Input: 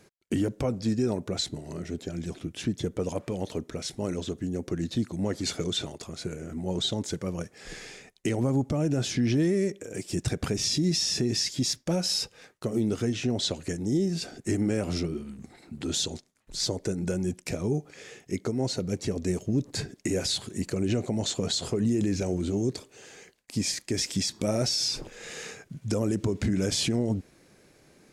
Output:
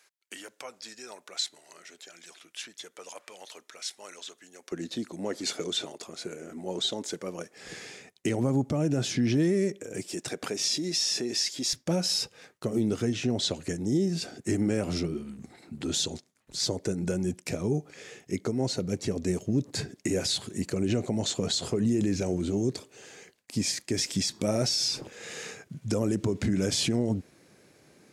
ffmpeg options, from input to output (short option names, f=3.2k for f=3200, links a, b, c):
-af "asetnsamples=n=441:p=0,asendcmd='4.72 highpass f 300;7.57 highpass f 99;10.08 highpass f 350;11.73 highpass f 83',highpass=1.2k"